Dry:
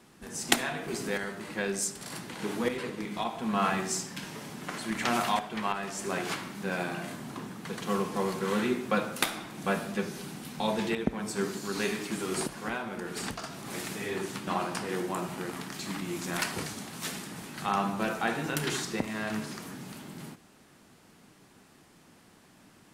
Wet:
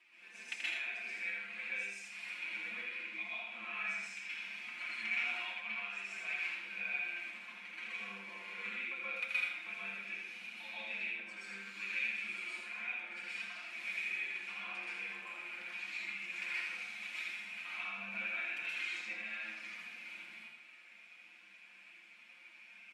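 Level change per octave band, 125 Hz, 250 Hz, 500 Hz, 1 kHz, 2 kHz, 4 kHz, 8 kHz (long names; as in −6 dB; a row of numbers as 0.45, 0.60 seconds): below −25 dB, −27.0 dB, −25.0 dB, −18.5 dB, −1.0 dB, −9.0 dB, −22.0 dB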